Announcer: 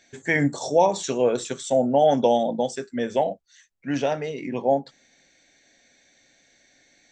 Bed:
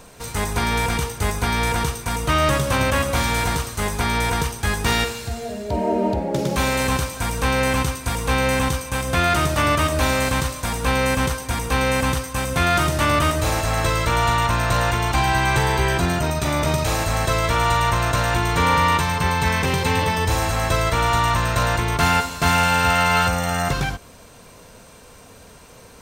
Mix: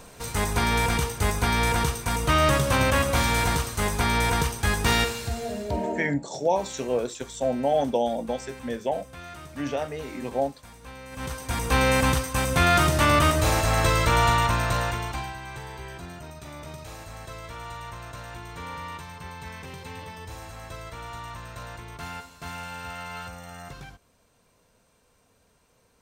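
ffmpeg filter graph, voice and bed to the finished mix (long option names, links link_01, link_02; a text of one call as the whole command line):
ffmpeg -i stem1.wav -i stem2.wav -filter_complex "[0:a]adelay=5700,volume=-5dB[link_01];[1:a]volume=20dB,afade=type=out:start_time=5.59:duration=0.55:silence=0.0891251,afade=type=in:start_time=11.11:duration=0.65:silence=0.0794328,afade=type=out:start_time=14.21:duration=1.15:silence=0.11885[link_02];[link_01][link_02]amix=inputs=2:normalize=0" out.wav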